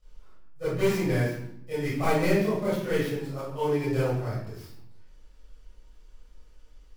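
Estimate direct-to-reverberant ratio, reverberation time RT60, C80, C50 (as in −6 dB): −13.0 dB, 0.75 s, 4.0 dB, −1.0 dB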